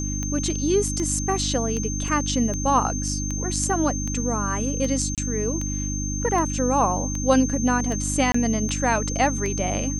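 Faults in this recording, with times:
mains hum 50 Hz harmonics 6 −28 dBFS
scratch tick 78 rpm −17 dBFS
whistle 6,300 Hz −30 dBFS
0:02.08: drop-out 2.1 ms
0:05.15–0:05.18: drop-out 27 ms
0:08.32–0:08.34: drop-out 24 ms

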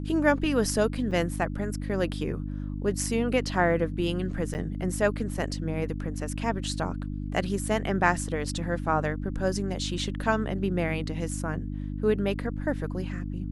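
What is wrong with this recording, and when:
mains hum 50 Hz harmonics 6 −33 dBFS
0:01.11: drop-out 3 ms
0:04.54–0:04.55: drop-out 9 ms

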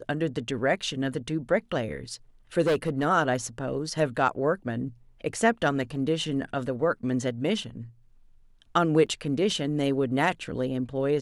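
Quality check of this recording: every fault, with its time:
0:02.62–0:03.06: clipping −20 dBFS
0:09.06: drop-out 5 ms

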